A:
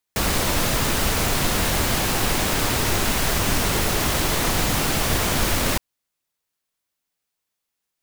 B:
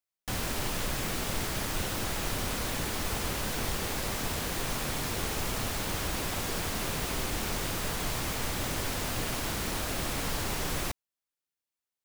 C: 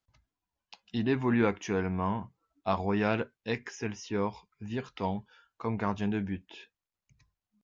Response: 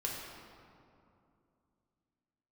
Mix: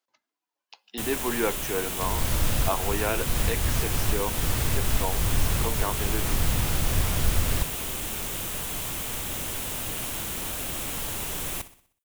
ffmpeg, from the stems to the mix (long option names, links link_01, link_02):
-filter_complex "[0:a]acrossover=split=130[link_01][link_02];[link_02]acompressor=threshold=-39dB:ratio=3[link_03];[link_01][link_03]amix=inputs=2:normalize=0,adelay=1850,volume=2.5dB[link_04];[1:a]aexciter=amount=1.7:drive=3.1:freq=2600,adelay=700,volume=-3dB,asplit=2[link_05][link_06];[link_06]volume=-15dB[link_07];[2:a]highpass=frequency=300:width=0.5412,highpass=frequency=300:width=1.3066,volume=1.5dB,asplit=3[link_08][link_09][link_10];[link_09]volume=-22.5dB[link_11];[link_10]apad=whole_len=435680[link_12];[link_04][link_12]sidechaincompress=threshold=-32dB:ratio=8:attack=16:release=261[link_13];[3:a]atrim=start_sample=2205[link_14];[link_11][link_14]afir=irnorm=-1:irlink=0[link_15];[link_07]aecho=0:1:62|124|186|248|310|372:1|0.46|0.212|0.0973|0.0448|0.0206[link_16];[link_13][link_05][link_08][link_15][link_16]amix=inputs=5:normalize=0"